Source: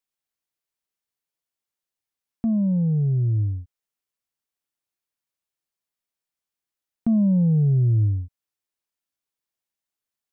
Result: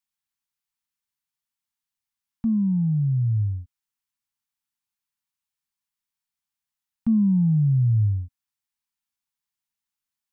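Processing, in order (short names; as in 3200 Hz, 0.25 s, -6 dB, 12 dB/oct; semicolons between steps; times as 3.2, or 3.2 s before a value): elliptic band-stop 250–840 Hz, stop band 40 dB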